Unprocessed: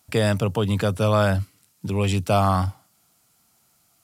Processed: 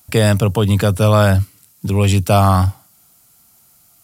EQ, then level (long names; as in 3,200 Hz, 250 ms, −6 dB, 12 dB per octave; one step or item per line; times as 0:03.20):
low-shelf EQ 87 Hz +8.5 dB
high-shelf EQ 9,900 Hz +11.5 dB
+5.5 dB